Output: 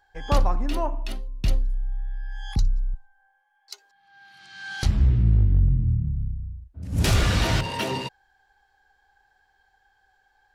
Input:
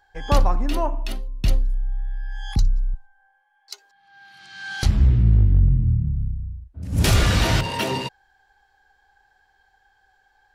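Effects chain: Doppler distortion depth 0.11 ms; gain -3 dB

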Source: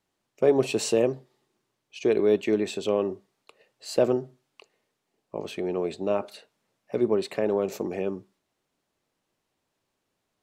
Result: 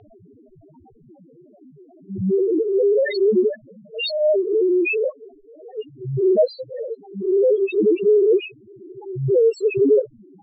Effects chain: whole clip reversed; high shelf 5800 Hz -2.5 dB; loudest bins only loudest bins 1; low-pass sweep 3200 Hz -> 760 Hz, 4.99–5.8; fast leveller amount 70%; gain +6 dB

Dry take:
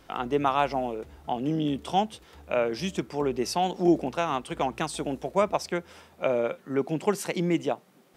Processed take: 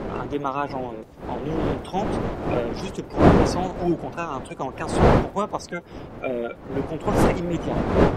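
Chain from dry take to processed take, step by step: bin magnitudes rounded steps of 30 dB; wind noise 520 Hz -23 dBFS; gain -1 dB

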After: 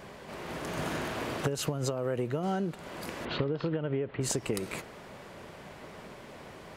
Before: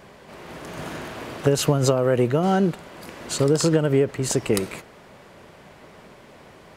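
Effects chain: 3.25–4.21 steep low-pass 3600 Hz 36 dB/oct; compressor 16:1, threshold -27 dBFS, peak gain reduction 15 dB

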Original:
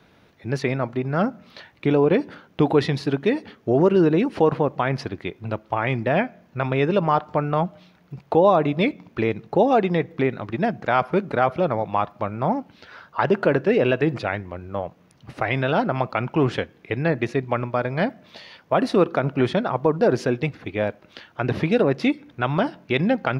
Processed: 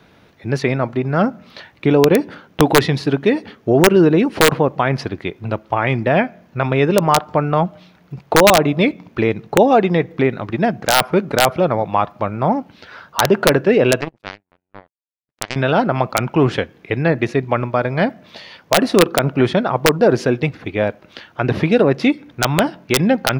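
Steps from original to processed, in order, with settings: 14.01–15.56 power-law curve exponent 3; wrapped overs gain 7.5 dB; gain +5.5 dB

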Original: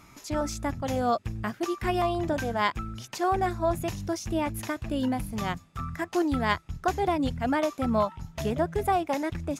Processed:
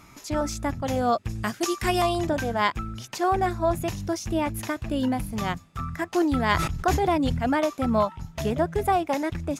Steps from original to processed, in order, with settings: 1.29–2.27 bell 8000 Hz +11.5 dB 2.2 oct; 6.16–7.52 sustainer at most 42 dB/s; gain +2.5 dB

